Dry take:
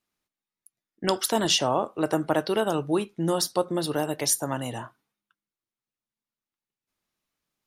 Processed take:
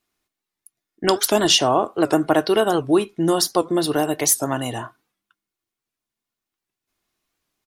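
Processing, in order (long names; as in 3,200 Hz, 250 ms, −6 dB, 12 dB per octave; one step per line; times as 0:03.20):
comb filter 2.8 ms, depth 34%
wow of a warped record 78 rpm, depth 160 cents
level +6 dB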